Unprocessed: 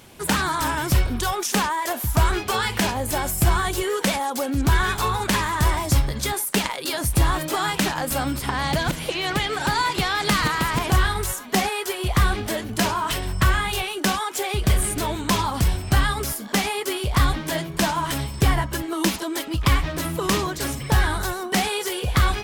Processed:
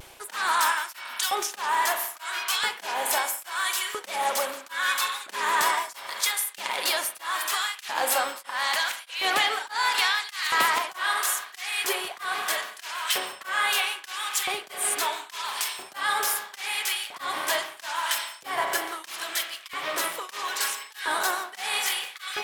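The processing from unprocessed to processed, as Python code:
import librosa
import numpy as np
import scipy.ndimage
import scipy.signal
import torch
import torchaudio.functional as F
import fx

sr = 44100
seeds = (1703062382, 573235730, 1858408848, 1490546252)

p1 = fx.highpass(x, sr, hz=260.0, slope=6)
p2 = p1 + fx.echo_swing(p1, sr, ms=1440, ratio=3, feedback_pct=69, wet_db=-22.0, dry=0)
p3 = fx.filter_lfo_highpass(p2, sr, shape='saw_up', hz=0.76, low_hz=460.0, high_hz=2400.0, q=0.85)
p4 = np.clip(10.0 ** (17.0 / 20.0) * p3, -1.0, 1.0) / 10.0 ** (17.0 / 20.0)
p5 = p3 + (p4 * 10.0 ** (-10.0 / 20.0))
p6 = fx.vibrato(p5, sr, rate_hz=0.33, depth_cents=15.0)
p7 = fx.rev_spring(p6, sr, rt60_s=1.9, pass_ms=(34,), chirp_ms=35, drr_db=6.0)
y = p7 * np.abs(np.cos(np.pi * 1.6 * np.arange(len(p7)) / sr))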